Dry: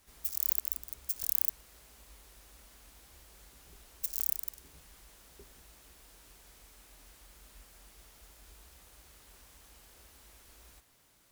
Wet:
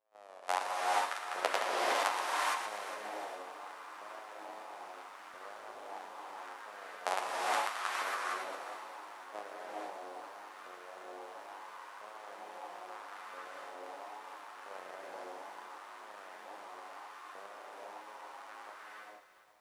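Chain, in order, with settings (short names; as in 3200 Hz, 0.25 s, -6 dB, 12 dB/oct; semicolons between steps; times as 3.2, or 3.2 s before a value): sample sorter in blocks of 256 samples; HPF 440 Hz 12 dB/oct; high shelf 3700 Hz -11 dB; expander -56 dBFS; negative-ratio compressor -48 dBFS, ratio -0.5; LFO high-pass saw up 1.3 Hz 1000–2500 Hz; wow and flutter 150 cents; flange 0.33 Hz, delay 4.2 ms, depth 7 ms, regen +45%; speed mistake 78 rpm record played at 45 rpm; thin delay 0.116 s, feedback 62%, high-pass 1500 Hz, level -11 dB; non-linear reverb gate 0.49 s rising, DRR -4.5 dB; lo-fi delay 0.407 s, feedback 35%, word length 12-bit, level -13 dB; gain +11 dB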